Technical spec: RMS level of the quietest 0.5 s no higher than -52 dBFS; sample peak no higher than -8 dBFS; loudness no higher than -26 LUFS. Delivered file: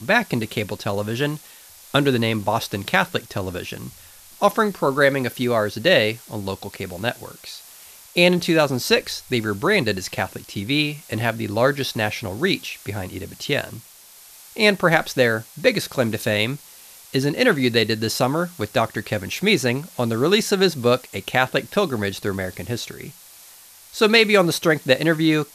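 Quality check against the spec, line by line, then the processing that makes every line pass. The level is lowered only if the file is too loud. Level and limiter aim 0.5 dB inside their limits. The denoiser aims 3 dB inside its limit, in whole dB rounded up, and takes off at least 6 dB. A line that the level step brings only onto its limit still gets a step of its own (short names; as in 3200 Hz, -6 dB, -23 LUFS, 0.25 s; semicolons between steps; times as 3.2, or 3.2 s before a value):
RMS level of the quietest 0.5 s -47 dBFS: fail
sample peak -2.5 dBFS: fail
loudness -21.0 LUFS: fail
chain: gain -5.5 dB; limiter -8.5 dBFS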